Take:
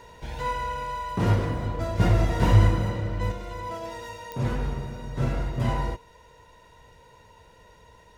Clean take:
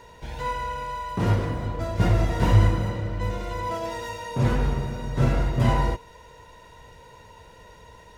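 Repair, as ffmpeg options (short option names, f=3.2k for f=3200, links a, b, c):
-af "adeclick=t=4,asetnsamples=n=441:p=0,asendcmd='3.32 volume volume 5dB',volume=0dB"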